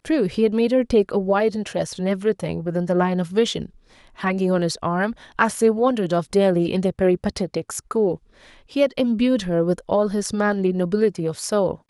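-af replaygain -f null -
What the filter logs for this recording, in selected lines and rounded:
track_gain = +1.3 dB
track_peak = 0.573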